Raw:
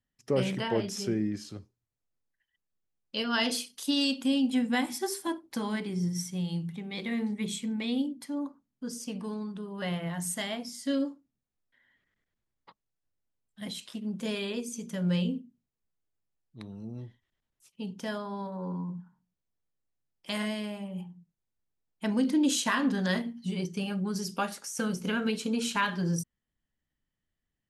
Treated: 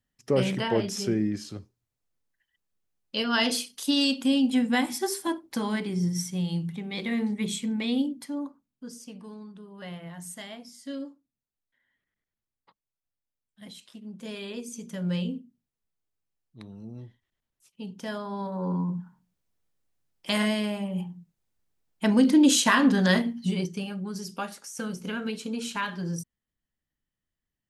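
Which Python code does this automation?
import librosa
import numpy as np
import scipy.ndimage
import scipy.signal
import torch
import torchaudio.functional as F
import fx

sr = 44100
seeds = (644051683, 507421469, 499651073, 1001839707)

y = fx.gain(x, sr, db=fx.line((8.11, 3.5), (9.17, -7.0), (14.11, -7.0), (14.72, -1.0), (17.95, -1.0), (18.75, 7.0), (23.44, 7.0), (23.93, -2.5)))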